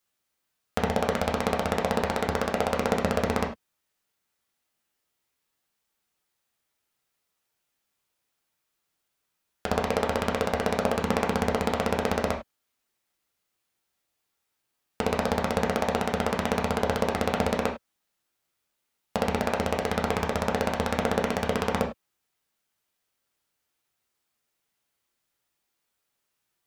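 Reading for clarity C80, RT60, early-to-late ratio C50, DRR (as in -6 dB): 14.0 dB, not exponential, 8.5 dB, 0.0 dB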